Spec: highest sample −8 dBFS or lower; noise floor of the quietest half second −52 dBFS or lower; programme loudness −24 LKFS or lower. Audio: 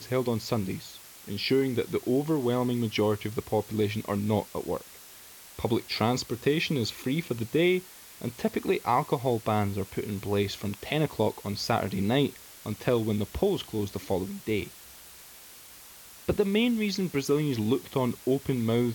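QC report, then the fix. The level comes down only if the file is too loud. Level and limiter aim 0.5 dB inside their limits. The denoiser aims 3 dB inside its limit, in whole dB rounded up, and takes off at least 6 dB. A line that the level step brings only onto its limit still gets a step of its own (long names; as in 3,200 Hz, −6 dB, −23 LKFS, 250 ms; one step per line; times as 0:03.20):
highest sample −10.5 dBFS: in spec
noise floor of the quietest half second −49 dBFS: out of spec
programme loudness −28.5 LKFS: in spec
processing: broadband denoise 6 dB, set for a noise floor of −49 dBFS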